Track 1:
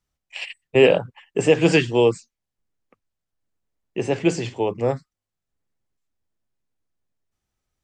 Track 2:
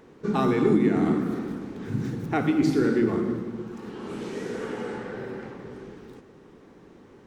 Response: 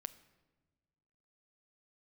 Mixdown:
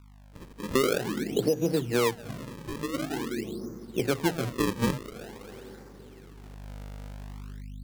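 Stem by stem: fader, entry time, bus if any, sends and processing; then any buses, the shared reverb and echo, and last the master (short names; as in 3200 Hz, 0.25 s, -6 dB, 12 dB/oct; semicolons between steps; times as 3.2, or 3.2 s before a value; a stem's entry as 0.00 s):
6.19 s -15.5 dB -> 6.7 s -4 dB, 0.00 s, send -4.5 dB, ten-band EQ 125 Hz +10 dB, 250 Hz +10 dB, 500 Hz +10 dB, 1000 Hz +4 dB, 2000 Hz -5 dB; hum 50 Hz, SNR 27 dB
-9.5 dB, 0.35 s, no send, HPF 91 Hz 6 dB/oct; treble ducked by the level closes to 530 Hz, closed at -20.5 dBFS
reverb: on, pre-delay 7 ms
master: decimation with a swept rate 35×, swing 160% 0.47 Hz; compressor 6:1, threshold -22 dBFS, peak gain reduction 11.5 dB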